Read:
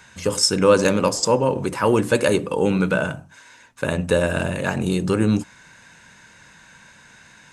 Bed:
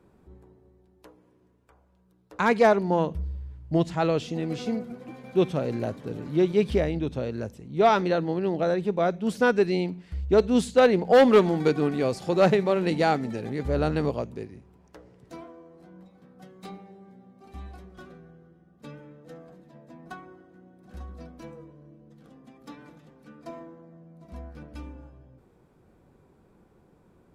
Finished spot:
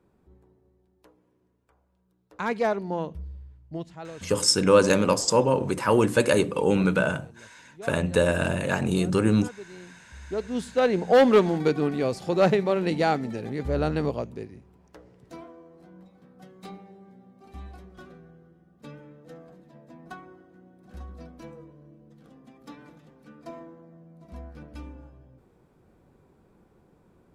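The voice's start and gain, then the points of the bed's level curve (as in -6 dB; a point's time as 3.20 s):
4.05 s, -2.5 dB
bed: 3.41 s -6 dB
4.37 s -20.5 dB
9.70 s -20.5 dB
11.05 s -0.5 dB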